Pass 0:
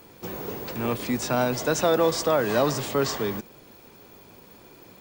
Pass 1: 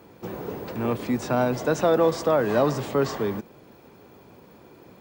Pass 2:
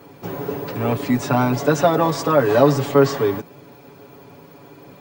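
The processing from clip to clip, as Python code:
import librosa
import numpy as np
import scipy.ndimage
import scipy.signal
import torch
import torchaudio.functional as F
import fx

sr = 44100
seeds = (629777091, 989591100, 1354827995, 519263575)

y1 = scipy.signal.sosfilt(scipy.signal.butter(2, 64.0, 'highpass', fs=sr, output='sos'), x)
y1 = fx.high_shelf(y1, sr, hz=2400.0, db=-11.5)
y1 = y1 * 10.0 ** (2.0 / 20.0)
y2 = y1 + 0.95 * np.pad(y1, (int(7.1 * sr / 1000.0), 0))[:len(y1)]
y2 = y2 * 10.0 ** (3.5 / 20.0)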